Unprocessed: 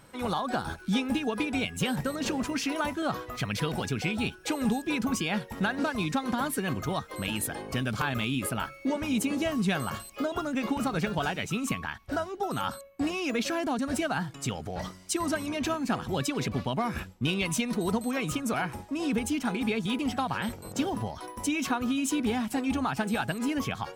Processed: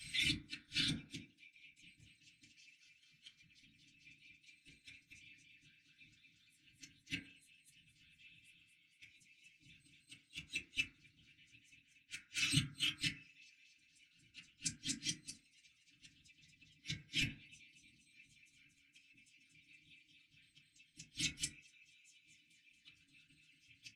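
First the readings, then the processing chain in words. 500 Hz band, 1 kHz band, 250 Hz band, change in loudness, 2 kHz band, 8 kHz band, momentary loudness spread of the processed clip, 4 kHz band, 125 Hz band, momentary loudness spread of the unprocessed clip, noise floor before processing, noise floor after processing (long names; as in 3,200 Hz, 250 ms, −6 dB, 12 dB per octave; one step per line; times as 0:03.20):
below −35 dB, −38.5 dB, −25.5 dB, −10.0 dB, −13.5 dB, −11.0 dB, 24 LU, −6.5 dB, −17.5 dB, 5 LU, −48 dBFS, −74 dBFS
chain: Chebyshev band-stop filter 170–2,400 Hz, order 4
three-way crossover with the lows and the highs turned down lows −17 dB, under 370 Hz, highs −23 dB, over 6,500 Hz
comb filter 5.4 ms, depth 57%
random phases in short frames
feedback echo with a high-pass in the loop 233 ms, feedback 50%, high-pass 190 Hz, level −4 dB
gate with flip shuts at −35 dBFS, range −41 dB
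graphic EQ with 15 bands 400 Hz −10 dB, 1,000 Hz −4 dB, 10,000 Hz +6 dB
feedback delay network reverb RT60 0.5 s, low-frequency decay 0.75×, high-frequency decay 0.25×, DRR −8 dB
level +8.5 dB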